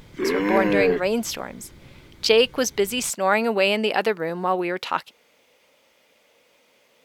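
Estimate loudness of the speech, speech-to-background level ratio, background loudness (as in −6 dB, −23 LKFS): −22.5 LKFS, 0.5 dB, −23.0 LKFS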